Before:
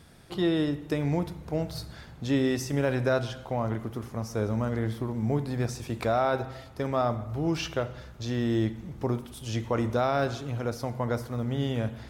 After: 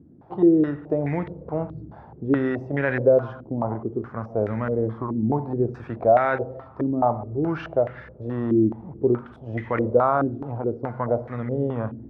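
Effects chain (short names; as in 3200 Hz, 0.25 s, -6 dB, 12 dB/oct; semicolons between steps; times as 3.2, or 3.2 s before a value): HPF 78 Hz; stepped low-pass 4.7 Hz 300–1900 Hz; gain +1 dB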